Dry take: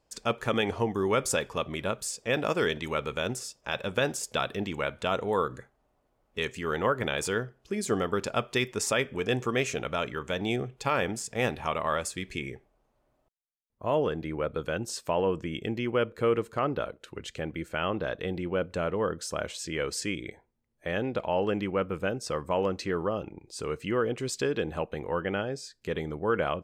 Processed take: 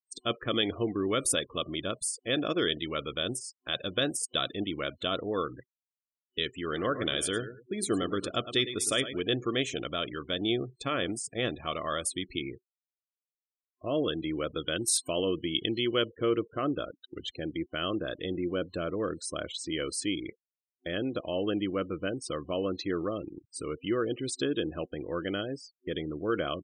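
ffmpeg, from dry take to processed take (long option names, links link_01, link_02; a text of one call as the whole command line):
ffmpeg -i in.wav -filter_complex "[0:a]asplit=3[link_01][link_02][link_03];[link_01]afade=type=out:start_time=6.71:duration=0.02[link_04];[link_02]aecho=1:1:108|216|324|432:0.266|0.0931|0.0326|0.0114,afade=type=in:start_time=6.71:duration=0.02,afade=type=out:start_time=9.2:duration=0.02[link_05];[link_03]afade=type=in:start_time=9.2:duration=0.02[link_06];[link_04][link_05][link_06]amix=inputs=3:normalize=0,asettb=1/sr,asplit=3[link_07][link_08][link_09];[link_07]atrim=end=14.084[link_10];[link_08]atrim=start=14.08:end=16.02,asetpts=PTS-STARTPTS,afade=type=in:duration=0.004:curve=qsin,afade=type=out:start_time=1.936:duration=0.004:curve=qsin,highshelf=frequency=2600:gain=11[link_11];[link_09]atrim=start=16.016[link_12];[link_10][link_11]acrossfade=duration=0.004:curve1=hsin:curve2=qsin[link_13];[link_13][link_12]acrossfade=duration=0.004:curve1=qsin:curve2=hsin,agate=range=-33dB:threshold=-44dB:ratio=3:detection=peak,afftfilt=real='re*gte(hypot(re,im),0.0126)':imag='im*gte(hypot(re,im),0.0126)':win_size=1024:overlap=0.75,superequalizer=6b=2.51:9b=0.282:13b=3.16:16b=3.98,volume=-4dB" out.wav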